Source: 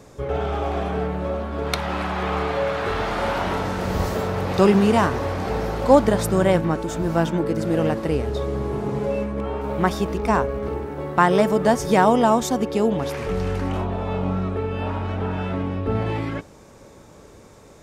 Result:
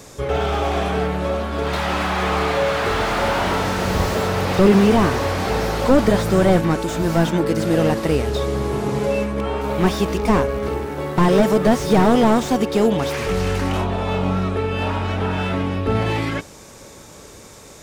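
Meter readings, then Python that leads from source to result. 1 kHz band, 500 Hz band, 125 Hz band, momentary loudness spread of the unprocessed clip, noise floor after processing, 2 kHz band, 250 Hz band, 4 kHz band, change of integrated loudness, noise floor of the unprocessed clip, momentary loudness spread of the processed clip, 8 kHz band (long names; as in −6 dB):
+1.5 dB, +2.5 dB, +3.5 dB, 10 LU, −42 dBFS, +4.0 dB, +3.5 dB, +6.5 dB, +3.0 dB, −47 dBFS, 7 LU, +3.5 dB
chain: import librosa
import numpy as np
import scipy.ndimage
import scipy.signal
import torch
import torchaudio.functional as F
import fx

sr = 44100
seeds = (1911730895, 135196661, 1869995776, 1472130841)

y = fx.high_shelf(x, sr, hz=2100.0, db=11.0)
y = fx.slew_limit(y, sr, full_power_hz=110.0)
y = y * librosa.db_to_amplitude(3.0)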